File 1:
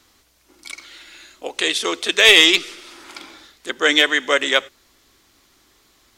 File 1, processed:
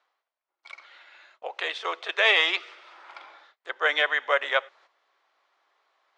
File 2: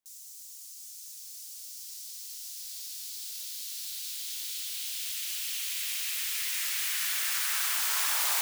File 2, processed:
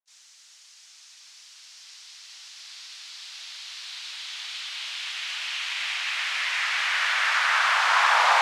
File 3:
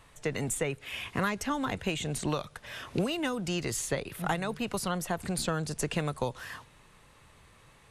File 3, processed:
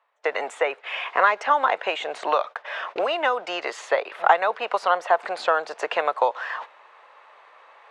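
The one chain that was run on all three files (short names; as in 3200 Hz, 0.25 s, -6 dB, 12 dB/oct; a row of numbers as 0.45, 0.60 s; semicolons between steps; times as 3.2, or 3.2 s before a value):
HPF 600 Hz 24 dB/oct; gate -48 dBFS, range -23 dB; bell 840 Hz +4 dB 2.6 oct; reverse; upward compressor, threshold -43 dBFS; reverse; tape spacing loss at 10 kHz 35 dB; match loudness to -24 LUFS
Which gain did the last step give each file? -2.0, +18.5, +15.0 dB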